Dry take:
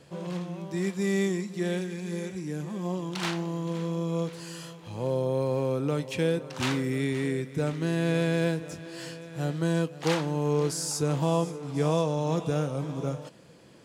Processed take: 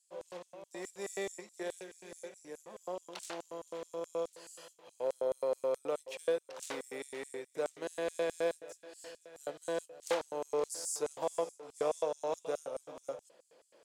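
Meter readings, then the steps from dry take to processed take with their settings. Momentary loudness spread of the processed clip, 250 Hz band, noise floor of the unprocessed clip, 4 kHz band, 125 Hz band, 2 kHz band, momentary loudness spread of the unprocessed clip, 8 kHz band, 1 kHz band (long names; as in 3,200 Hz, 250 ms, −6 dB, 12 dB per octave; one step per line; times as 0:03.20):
15 LU, −20.0 dB, −48 dBFS, −11.5 dB, −32.5 dB, −10.5 dB, 9 LU, −5.5 dB, −7.0 dB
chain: harmonic generator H 4 −23 dB, 6 −25 dB, 7 −28 dB, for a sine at −12.5 dBFS
auto-filter high-pass square 4.7 Hz 540–7,900 Hz
level −7.5 dB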